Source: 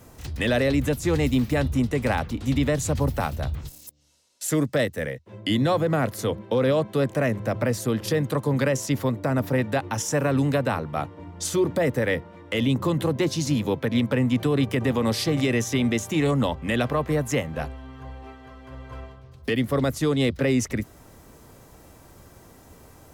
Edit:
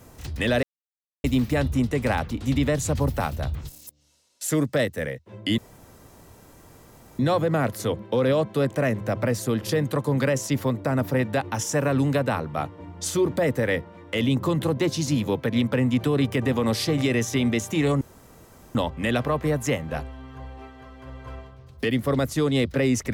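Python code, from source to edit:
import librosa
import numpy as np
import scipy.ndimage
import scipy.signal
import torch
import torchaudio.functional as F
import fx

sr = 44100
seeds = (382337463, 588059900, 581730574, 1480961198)

y = fx.edit(x, sr, fx.silence(start_s=0.63, length_s=0.61),
    fx.insert_room_tone(at_s=5.58, length_s=1.61),
    fx.insert_room_tone(at_s=16.4, length_s=0.74), tone=tone)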